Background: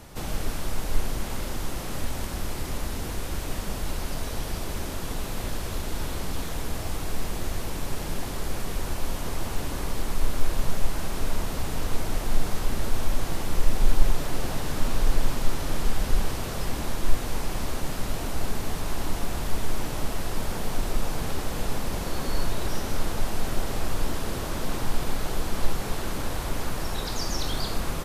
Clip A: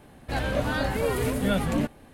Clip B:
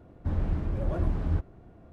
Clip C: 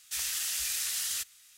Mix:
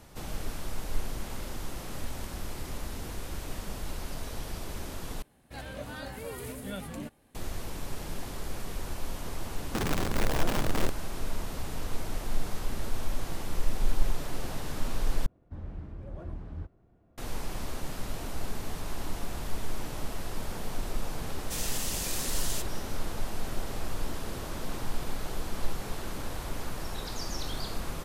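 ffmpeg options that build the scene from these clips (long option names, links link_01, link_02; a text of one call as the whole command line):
ffmpeg -i bed.wav -i cue0.wav -i cue1.wav -i cue2.wav -filter_complex "[2:a]asplit=2[link_01][link_02];[0:a]volume=-6.5dB[link_03];[1:a]highshelf=frequency=4700:gain=9[link_04];[link_01]aeval=exprs='(mod(16.8*val(0)+1,2)-1)/16.8':channel_layout=same[link_05];[link_03]asplit=3[link_06][link_07][link_08];[link_06]atrim=end=5.224[link_09];[link_04]atrim=end=2.13,asetpts=PTS-STARTPTS,volume=-14dB[link_10];[link_07]atrim=start=7.346:end=15.264[link_11];[link_02]atrim=end=1.92,asetpts=PTS-STARTPTS,volume=-12dB[link_12];[link_08]atrim=start=17.176[link_13];[link_05]atrim=end=1.92,asetpts=PTS-STARTPTS,volume=-1dB,afade=type=in:duration=0.004:curve=hsin,afade=type=out:start_time=1.916:duration=0.004:curve=hsin,adelay=9490[link_14];[3:a]atrim=end=1.57,asetpts=PTS-STARTPTS,volume=-3dB,afade=type=in:duration=0.004:curve=hsin,afade=type=out:start_time=1.566:duration=0.004:curve=hsin,adelay=21390[link_15];[link_09][link_10]acrossfade=duration=0.004:curve1=hsin:curve2=hsin[link_16];[link_16][link_11]acrossfade=duration=0.004:curve1=hsin:curve2=hsin[link_17];[link_17][link_12]acrossfade=duration=0.004:curve1=hsin:curve2=hsin[link_18];[link_18][link_13]acrossfade=duration=0.004:curve1=hsin:curve2=hsin[link_19];[link_19][link_14][link_15]amix=inputs=3:normalize=0" out.wav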